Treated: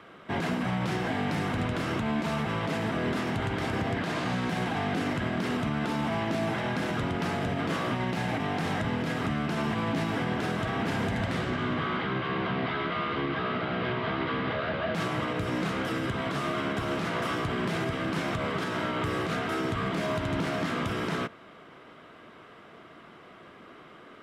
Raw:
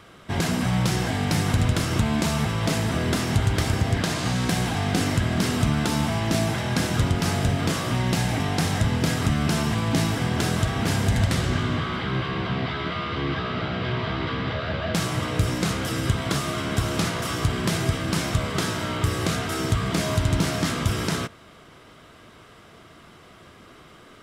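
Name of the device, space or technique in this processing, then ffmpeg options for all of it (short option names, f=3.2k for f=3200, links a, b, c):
DJ mixer with the lows and highs turned down: -filter_complex "[0:a]acrossover=split=160 3200:gain=0.2 1 0.178[a][b][c];[a][b][c]amix=inputs=3:normalize=0,alimiter=limit=-20.5dB:level=0:latency=1:release=68"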